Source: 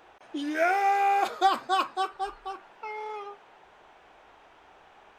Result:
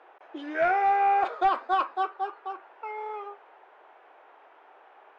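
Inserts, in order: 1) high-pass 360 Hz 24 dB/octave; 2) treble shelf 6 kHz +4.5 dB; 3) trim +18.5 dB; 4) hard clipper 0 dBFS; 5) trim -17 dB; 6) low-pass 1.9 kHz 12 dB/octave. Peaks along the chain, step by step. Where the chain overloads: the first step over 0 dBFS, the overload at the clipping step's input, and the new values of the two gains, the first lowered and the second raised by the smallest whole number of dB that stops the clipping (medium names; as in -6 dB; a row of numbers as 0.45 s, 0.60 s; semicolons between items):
-11.5 dBFS, -11.0 dBFS, +7.5 dBFS, 0.0 dBFS, -17.0 dBFS, -16.5 dBFS; step 3, 7.5 dB; step 3 +10.5 dB, step 5 -9 dB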